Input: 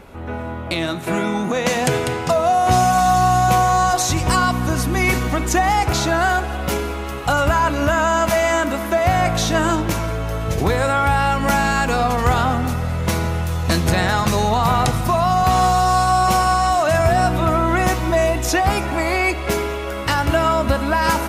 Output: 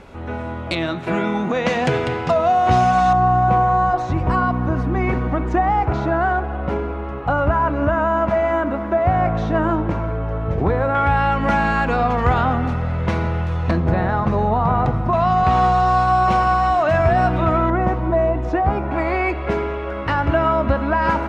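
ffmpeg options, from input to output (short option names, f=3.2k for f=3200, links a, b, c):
-af "asetnsamples=n=441:p=0,asendcmd='0.75 lowpass f 3200;3.13 lowpass f 1300;10.95 lowpass f 2400;13.71 lowpass f 1200;15.13 lowpass f 2500;17.7 lowpass f 1100;18.91 lowpass f 1900',lowpass=6.9k"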